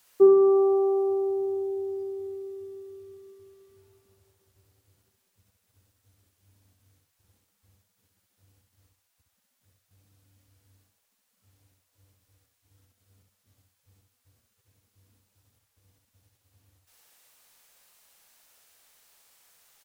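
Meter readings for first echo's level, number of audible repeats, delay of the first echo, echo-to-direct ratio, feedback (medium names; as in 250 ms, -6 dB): -4.5 dB, 3, 65 ms, -4.0 dB, 25%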